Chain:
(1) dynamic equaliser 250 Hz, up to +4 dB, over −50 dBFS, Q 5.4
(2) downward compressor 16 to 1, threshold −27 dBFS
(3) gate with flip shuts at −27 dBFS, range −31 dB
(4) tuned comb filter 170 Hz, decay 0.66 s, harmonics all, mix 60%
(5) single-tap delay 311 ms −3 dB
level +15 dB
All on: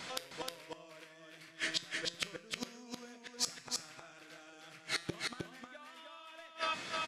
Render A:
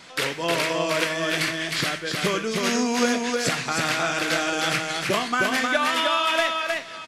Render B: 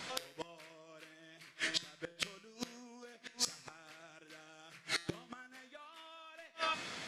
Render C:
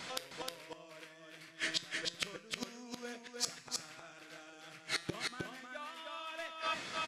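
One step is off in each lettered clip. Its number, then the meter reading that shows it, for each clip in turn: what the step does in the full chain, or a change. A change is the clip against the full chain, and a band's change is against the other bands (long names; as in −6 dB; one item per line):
3, change in momentary loudness spread −14 LU
5, change in crest factor +1.5 dB
2, average gain reduction 2.0 dB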